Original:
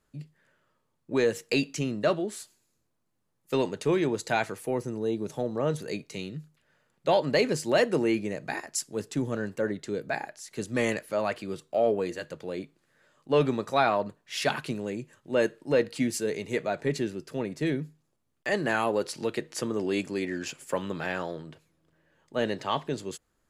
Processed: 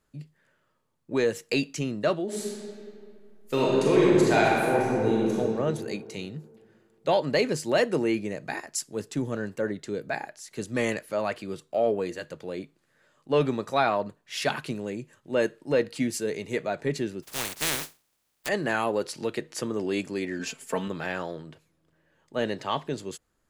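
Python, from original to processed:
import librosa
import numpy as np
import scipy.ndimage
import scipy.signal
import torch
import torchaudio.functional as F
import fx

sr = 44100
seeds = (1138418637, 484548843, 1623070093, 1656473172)

y = fx.reverb_throw(x, sr, start_s=2.24, length_s=3.11, rt60_s=2.4, drr_db=-5.5)
y = fx.spec_flatten(y, sr, power=0.18, at=(17.22, 18.47), fade=0.02)
y = fx.comb(y, sr, ms=4.5, depth=0.81, at=(20.39, 20.88))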